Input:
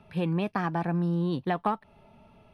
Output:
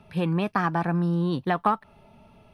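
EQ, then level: tone controls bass +1 dB, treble +4 dB; dynamic EQ 1300 Hz, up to +6 dB, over -46 dBFS, Q 1.6; +2.0 dB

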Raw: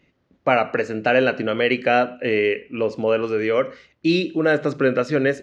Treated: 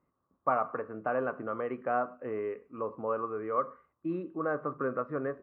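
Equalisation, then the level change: ladder low-pass 1200 Hz, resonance 80%; -3.0 dB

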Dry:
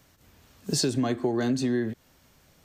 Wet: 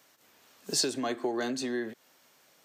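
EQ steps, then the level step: Bessel high-pass 460 Hz, order 2; 0.0 dB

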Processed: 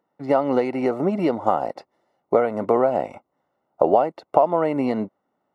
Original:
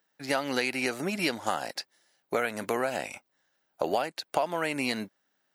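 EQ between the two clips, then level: dynamic EQ 550 Hz, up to +3 dB, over -42 dBFS, Q 0.99; polynomial smoothing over 65 samples; +9.0 dB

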